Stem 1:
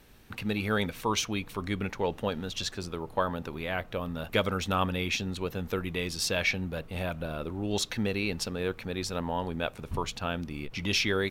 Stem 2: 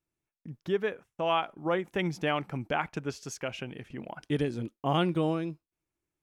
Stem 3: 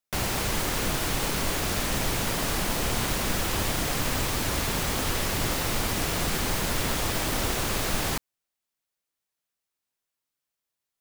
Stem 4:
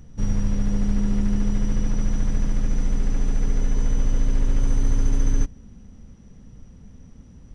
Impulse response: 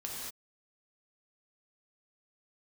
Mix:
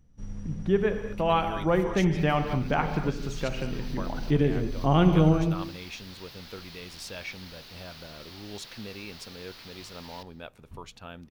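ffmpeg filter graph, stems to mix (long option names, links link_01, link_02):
-filter_complex "[0:a]adelay=800,volume=-11dB[link_01];[1:a]lowpass=frequency=2200:poles=1,equalizer=frequency=170:width_type=o:width=0.77:gain=5.5,volume=0.5dB,asplit=3[link_02][link_03][link_04];[link_03]volume=-3.5dB[link_05];[2:a]highpass=frequency=48:width=0.5412,highpass=frequency=48:width=1.3066,aeval=exprs='(mod(21.1*val(0)+1,2)-1)/21.1':channel_layout=same,highshelf=frequency=6000:width_type=q:width=3:gain=-10.5,adelay=2050,volume=-16dB,asplit=2[link_06][link_07];[link_07]volume=-17.5dB[link_08];[3:a]volume=-19dB,asplit=2[link_09][link_10];[link_10]volume=-5.5dB[link_11];[link_04]apad=whole_len=575567[link_12];[link_06][link_12]sidechaincompress=threshold=-39dB:ratio=8:attack=25:release=184[link_13];[4:a]atrim=start_sample=2205[link_14];[link_05][link_08][link_11]amix=inputs=3:normalize=0[link_15];[link_15][link_14]afir=irnorm=-1:irlink=0[link_16];[link_01][link_02][link_13][link_09][link_16]amix=inputs=5:normalize=0"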